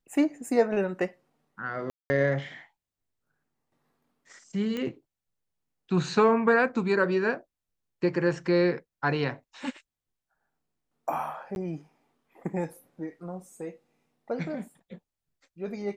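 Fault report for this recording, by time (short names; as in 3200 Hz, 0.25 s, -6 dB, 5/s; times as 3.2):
1.9–2.1 gap 0.2 s
4.77 pop -20 dBFS
11.55–11.56 gap 11 ms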